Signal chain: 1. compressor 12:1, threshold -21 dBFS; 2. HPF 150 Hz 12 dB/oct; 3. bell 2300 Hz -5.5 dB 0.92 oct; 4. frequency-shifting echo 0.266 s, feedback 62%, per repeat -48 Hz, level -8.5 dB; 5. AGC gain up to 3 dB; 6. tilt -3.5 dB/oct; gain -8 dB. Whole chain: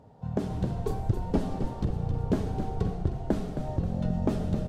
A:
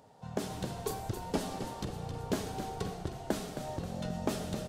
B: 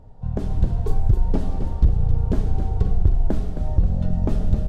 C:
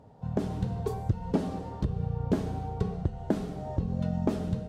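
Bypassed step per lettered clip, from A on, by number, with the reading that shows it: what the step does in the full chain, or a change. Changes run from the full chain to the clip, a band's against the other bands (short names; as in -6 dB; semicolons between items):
6, 4 kHz band +10.5 dB; 2, 125 Hz band +7.5 dB; 4, crest factor change +2.0 dB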